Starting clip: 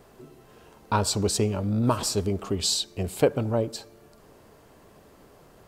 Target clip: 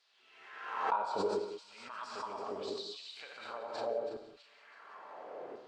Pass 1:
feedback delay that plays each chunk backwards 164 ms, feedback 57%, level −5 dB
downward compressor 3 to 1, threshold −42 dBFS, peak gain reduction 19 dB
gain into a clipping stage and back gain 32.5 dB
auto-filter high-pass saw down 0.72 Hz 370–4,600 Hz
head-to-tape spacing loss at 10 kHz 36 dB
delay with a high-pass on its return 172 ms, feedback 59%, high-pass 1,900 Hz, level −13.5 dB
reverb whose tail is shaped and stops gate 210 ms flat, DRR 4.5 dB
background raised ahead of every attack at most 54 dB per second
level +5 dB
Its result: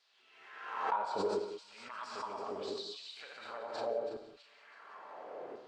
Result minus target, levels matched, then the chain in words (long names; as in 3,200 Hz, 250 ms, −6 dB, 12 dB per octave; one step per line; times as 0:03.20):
gain into a clipping stage and back: distortion +18 dB
feedback delay that plays each chunk backwards 164 ms, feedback 57%, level −5 dB
downward compressor 3 to 1, threshold −42 dBFS, peak gain reduction 19 dB
gain into a clipping stage and back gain 26 dB
auto-filter high-pass saw down 0.72 Hz 370–4,600 Hz
head-to-tape spacing loss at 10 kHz 36 dB
delay with a high-pass on its return 172 ms, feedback 59%, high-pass 1,900 Hz, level −13.5 dB
reverb whose tail is shaped and stops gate 210 ms flat, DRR 4.5 dB
background raised ahead of every attack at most 54 dB per second
level +5 dB